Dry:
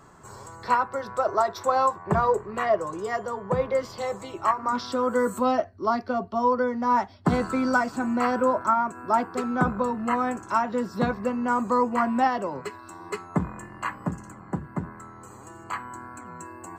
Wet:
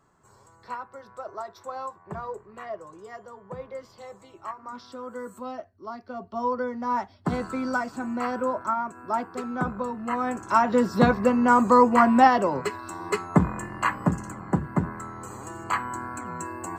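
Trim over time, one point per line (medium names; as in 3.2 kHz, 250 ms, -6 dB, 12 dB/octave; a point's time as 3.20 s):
5.98 s -13 dB
6.40 s -4.5 dB
10.04 s -4.5 dB
10.74 s +6 dB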